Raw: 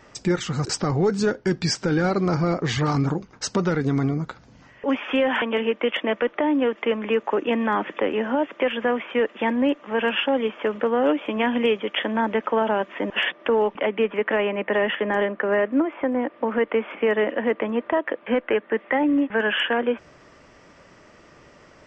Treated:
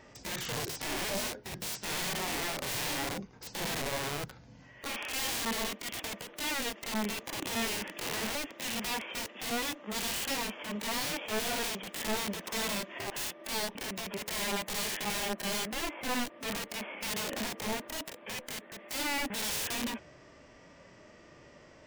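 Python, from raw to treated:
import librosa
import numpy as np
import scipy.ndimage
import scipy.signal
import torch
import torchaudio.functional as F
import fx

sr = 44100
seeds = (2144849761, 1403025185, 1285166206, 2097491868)

y = (np.mod(10.0 ** (24.0 / 20.0) * x + 1.0, 2.0) - 1.0) / 10.0 ** (24.0 / 20.0)
y = fx.hpss(y, sr, part='percussive', gain_db=-16)
y = fx.peak_eq(y, sr, hz=1300.0, db=-5.5, octaves=0.48)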